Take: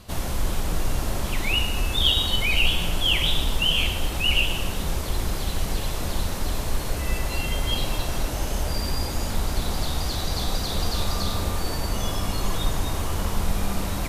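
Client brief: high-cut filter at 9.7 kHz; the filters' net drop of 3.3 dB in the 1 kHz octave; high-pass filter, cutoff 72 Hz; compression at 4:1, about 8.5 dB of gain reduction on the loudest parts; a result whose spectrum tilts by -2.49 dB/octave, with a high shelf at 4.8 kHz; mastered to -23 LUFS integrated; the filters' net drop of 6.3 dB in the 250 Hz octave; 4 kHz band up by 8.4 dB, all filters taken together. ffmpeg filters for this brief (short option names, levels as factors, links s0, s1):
-af "highpass=72,lowpass=9700,equalizer=f=250:t=o:g=-9,equalizer=f=1000:t=o:g=-4.5,equalizer=f=4000:t=o:g=8.5,highshelf=f=4800:g=8,acompressor=threshold=0.1:ratio=4,volume=1.06"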